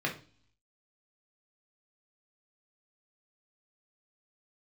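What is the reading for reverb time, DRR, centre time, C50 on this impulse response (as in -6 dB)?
0.40 s, -1.5 dB, 17 ms, 10.5 dB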